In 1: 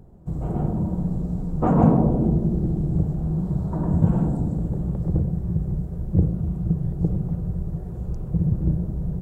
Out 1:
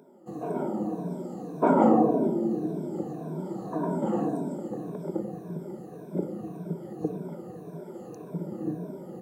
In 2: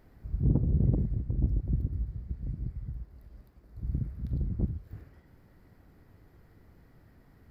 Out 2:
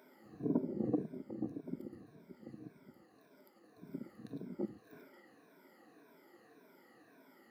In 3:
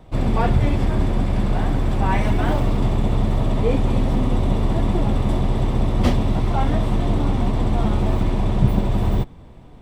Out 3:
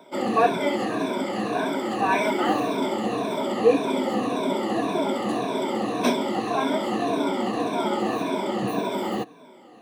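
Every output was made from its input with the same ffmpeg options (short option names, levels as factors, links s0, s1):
-af "afftfilt=real='re*pow(10,16/40*sin(2*PI*(1.6*log(max(b,1)*sr/1024/100)/log(2)-(-1.8)*(pts-256)/sr)))':imag='im*pow(10,16/40*sin(2*PI*(1.6*log(max(b,1)*sr/1024/100)/log(2)-(-1.8)*(pts-256)/sr)))':win_size=1024:overlap=0.75,highpass=f=260:w=0.5412,highpass=f=260:w=1.3066"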